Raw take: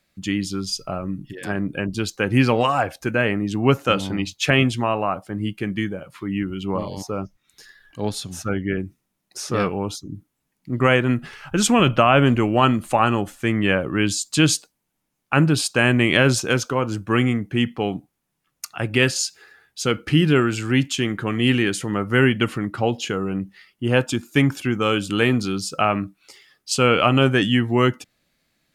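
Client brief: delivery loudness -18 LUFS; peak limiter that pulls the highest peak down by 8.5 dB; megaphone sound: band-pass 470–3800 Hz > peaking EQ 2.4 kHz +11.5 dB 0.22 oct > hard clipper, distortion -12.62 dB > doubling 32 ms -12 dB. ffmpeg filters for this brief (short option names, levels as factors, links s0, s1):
-filter_complex "[0:a]alimiter=limit=0.211:level=0:latency=1,highpass=470,lowpass=3800,equalizer=f=2400:t=o:w=0.22:g=11.5,asoftclip=type=hard:threshold=0.106,asplit=2[s0][s1];[s1]adelay=32,volume=0.251[s2];[s0][s2]amix=inputs=2:normalize=0,volume=3.16"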